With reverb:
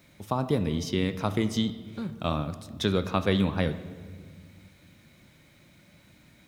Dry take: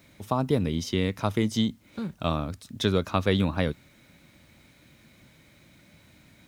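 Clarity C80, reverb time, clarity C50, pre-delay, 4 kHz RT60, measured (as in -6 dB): 14.5 dB, 1.7 s, 13.0 dB, 6 ms, 1.2 s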